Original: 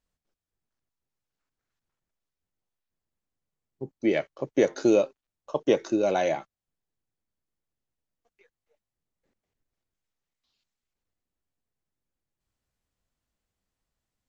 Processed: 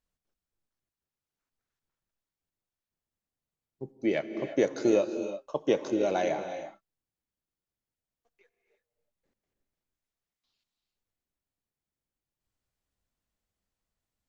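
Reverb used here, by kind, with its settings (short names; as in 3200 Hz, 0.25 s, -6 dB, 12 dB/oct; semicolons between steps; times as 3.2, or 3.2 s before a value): non-linear reverb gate 0.37 s rising, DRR 8.5 dB; gain -3.5 dB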